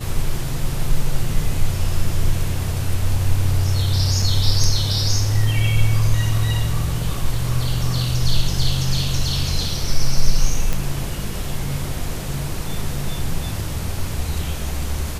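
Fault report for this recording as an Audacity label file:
4.220000	4.220000	dropout 4.9 ms
10.730000	10.730000	pop

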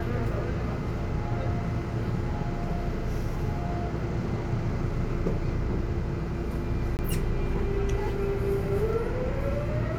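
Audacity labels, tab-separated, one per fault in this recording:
6.970000	6.990000	dropout 19 ms

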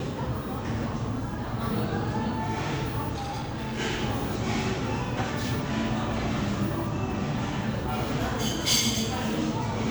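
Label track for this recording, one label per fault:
3.140000	3.800000	clipped -29 dBFS

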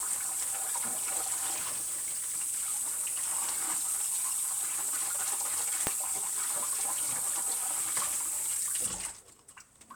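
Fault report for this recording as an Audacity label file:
1.540000	2.350000	clipped -31.5 dBFS
5.870000	5.870000	pop -10 dBFS

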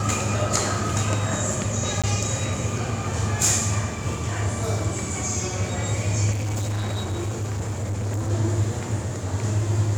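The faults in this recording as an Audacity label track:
2.020000	2.040000	dropout 16 ms
6.310000	8.310000	clipped -23.5 dBFS

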